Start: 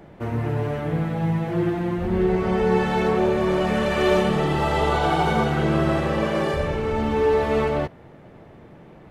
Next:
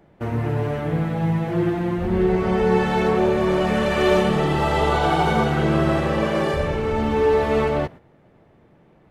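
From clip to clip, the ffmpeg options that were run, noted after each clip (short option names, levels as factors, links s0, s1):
-af "agate=range=0.316:threshold=0.0126:ratio=16:detection=peak,volume=1.19"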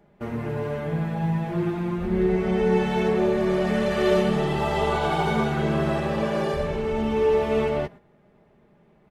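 -af "aecho=1:1:4.9:0.52,volume=0.562"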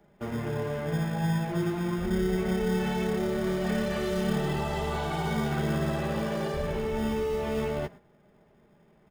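-filter_complex "[0:a]acrossover=split=240|4500[s0][s1][s2];[s0]acrusher=samples=26:mix=1:aa=0.000001[s3];[s1]alimiter=limit=0.075:level=0:latency=1[s4];[s3][s4][s2]amix=inputs=3:normalize=0,volume=0.75"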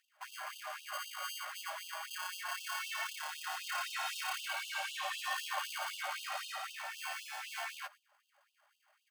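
-af "afreqshift=-410,afftfilt=real='re*gte(b*sr/1024,530*pow(2700/530,0.5+0.5*sin(2*PI*3.9*pts/sr)))':imag='im*gte(b*sr/1024,530*pow(2700/530,0.5+0.5*sin(2*PI*3.9*pts/sr)))':win_size=1024:overlap=0.75,volume=1.33"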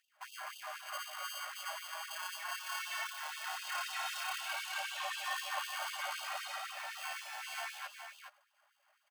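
-af "aecho=1:1:418:0.422,volume=0.891"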